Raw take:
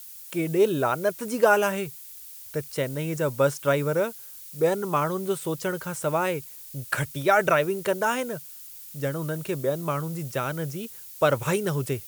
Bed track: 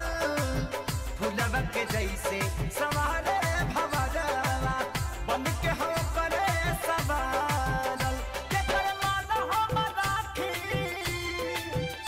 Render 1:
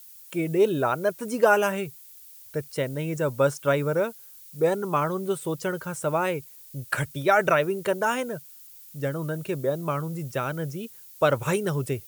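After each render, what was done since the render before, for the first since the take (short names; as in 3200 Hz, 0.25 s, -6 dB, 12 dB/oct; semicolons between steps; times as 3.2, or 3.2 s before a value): denoiser 6 dB, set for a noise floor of -43 dBFS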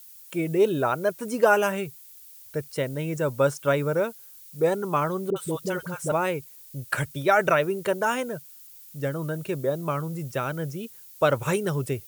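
5.3–6.12 dispersion highs, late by 59 ms, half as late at 560 Hz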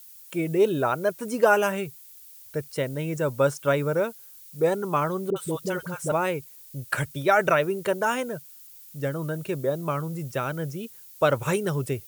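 nothing audible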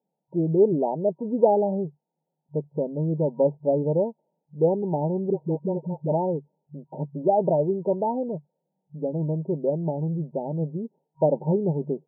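FFT band-pass 140–950 Hz; low shelf 200 Hz +9.5 dB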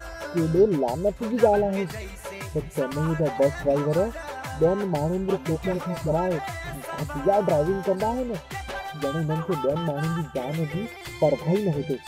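add bed track -6 dB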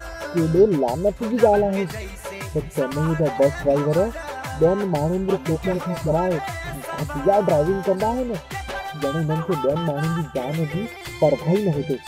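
gain +3.5 dB; limiter -3 dBFS, peak gain reduction 1 dB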